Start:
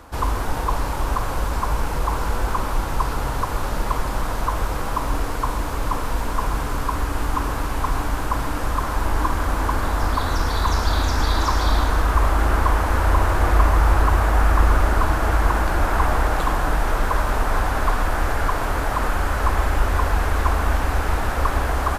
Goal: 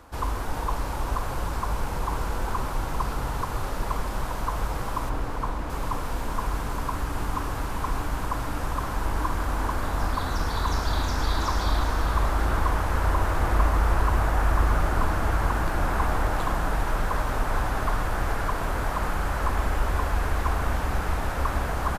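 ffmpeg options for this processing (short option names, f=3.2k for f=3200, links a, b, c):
-filter_complex "[0:a]asettb=1/sr,asplit=3[a][b][c];[a]atrim=end=5.094[d];[b]atrim=start=5.09:end=5.7,asetpts=PTS-STARTPTS,afade=t=in:d=0.004:c=qsin,afade=t=out:st=0.606:d=0.004:c=qsin,lowpass=f=2.6k:p=1[e];[c]atrim=start=5.696[f];[d][e]acrossfade=d=0.004:c1=hsin:c2=qsin[g];[g][f]acrossfade=d=0.004:c1=qsin:c2=hsin,asplit=7[h][i][j][k][l][m][n];[i]adelay=398,afreqshift=-72,volume=-10dB[o];[j]adelay=796,afreqshift=-144,volume=-15.5dB[p];[k]adelay=1194,afreqshift=-216,volume=-21dB[q];[l]adelay=1592,afreqshift=-288,volume=-26.5dB[r];[m]adelay=1990,afreqshift=-360,volume=-32.1dB[s];[n]adelay=2388,afreqshift=-432,volume=-37.6dB[t];[h][o][p][q][r][s][t]amix=inputs=7:normalize=0,volume=-6dB"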